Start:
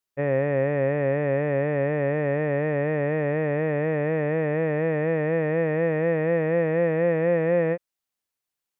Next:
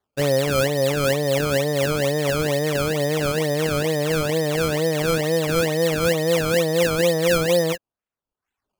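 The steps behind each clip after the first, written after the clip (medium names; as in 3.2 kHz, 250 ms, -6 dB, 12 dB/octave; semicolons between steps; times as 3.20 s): decimation with a swept rate 16×, swing 100% 2.2 Hz; reverb removal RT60 0.77 s; trim +5 dB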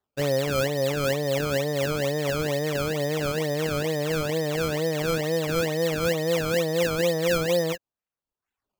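peaking EQ 9.7 kHz -6.5 dB 0.25 oct; trim -4.5 dB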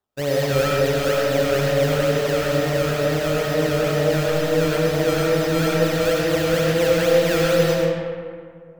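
algorithmic reverb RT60 2.2 s, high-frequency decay 0.5×, pre-delay 45 ms, DRR -4 dB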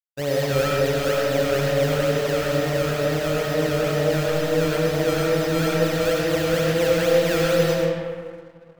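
crossover distortion -51 dBFS; trim -1.5 dB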